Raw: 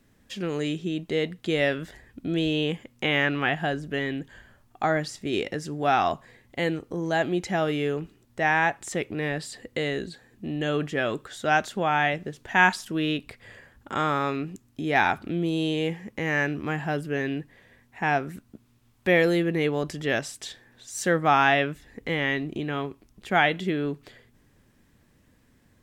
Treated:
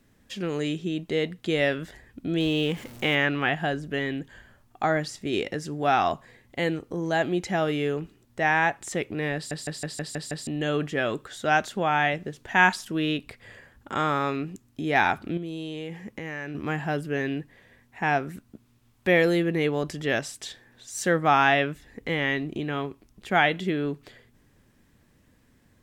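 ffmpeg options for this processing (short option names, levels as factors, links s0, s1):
-filter_complex "[0:a]asettb=1/sr,asplit=3[s0][s1][s2];[s0]atrim=end=2.404[s3];[s1]atrim=start=2.4:end=3.15,asetpts=PTS-STARTPTS,afade=t=in:d=0.004:c=qsin,afade=t=out:st=0.746:d=0.004:c=qsin,aeval=exprs='val(0)+0.5*0.0106*sgn(val(0))':c=same[s4];[s2]atrim=start=3.146[s5];[s3][s4]acrossfade=d=0.004:c1=hsin:c2=qsin[s6];[s6][s5]acrossfade=d=0.004:c1=qsin:c2=hsin,asettb=1/sr,asplit=3[s7][s8][s9];[s7]atrim=end=15.374[s10];[s8]atrim=start=15.37:end=16.55,asetpts=PTS-STARTPTS,afade=t=in:d=0.004:c=qsin,afade=t=out:st=1.176:d=0.004:c=qsin,acompressor=threshold=0.0282:ratio=6:attack=3.2:release=140:knee=1:detection=peak[s11];[s9]atrim=start=16.546[s12];[s10][s11]acrossfade=d=0.004:c1=hsin:c2=qsin[s13];[s13][s12]acrossfade=d=0.004:c1=qsin:c2=hsin,asplit=8[s14][s15][s16][s17][s18][s19][s20][s21];[s14]atrim=end=9.512[s22];[s15]atrim=start=9.348:end=9.512[s23];[s16]atrim=start=9.348:end=9.512[s24];[s17]atrim=start=9.348:end=9.512[s25];[s18]atrim=start=9.348:end=9.512[s26];[s19]atrim=start=9.348:end=9.512[s27];[s20]atrim=start=9.348:end=9.512[s28];[s21]atrim=start=10.468[s29];[s22][s23]acrossfade=d=0.004:c1=hsin:c2=hsin[s30];[s30][s24]acrossfade=d=0.004:c1=hsin:c2=hsin[s31];[s31][s25]acrossfade=d=0.004:c1=hsin:c2=hsin[s32];[s32][s26]acrossfade=d=0.004:c1=hsin:c2=hsin[s33];[s33][s27]acrossfade=d=0.004:c1=hsin:c2=hsin[s34];[s34][s28]acrossfade=d=0.004:c1=hsin:c2=hsin[s35];[s35][s29]acrossfade=d=0.004:c1=hsin:c2=hsin"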